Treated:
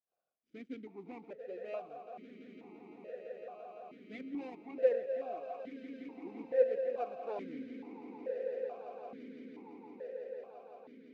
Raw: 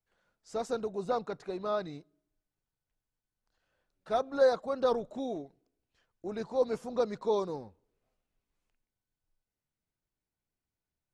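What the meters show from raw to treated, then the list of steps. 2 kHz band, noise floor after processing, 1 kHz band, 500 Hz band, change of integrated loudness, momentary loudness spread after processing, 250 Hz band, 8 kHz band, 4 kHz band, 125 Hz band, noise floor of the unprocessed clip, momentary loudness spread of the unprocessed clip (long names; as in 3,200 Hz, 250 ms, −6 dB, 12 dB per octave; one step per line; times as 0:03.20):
−6.5 dB, −66 dBFS, −9.0 dB, −4.0 dB, −7.5 dB, 20 LU, −4.5 dB, can't be measured, below −15 dB, below −10 dB, below −85 dBFS, 15 LU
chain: running median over 41 samples
echo that builds up and dies away 169 ms, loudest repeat 8, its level −13 dB
formant filter that steps through the vowels 2.3 Hz
level +3.5 dB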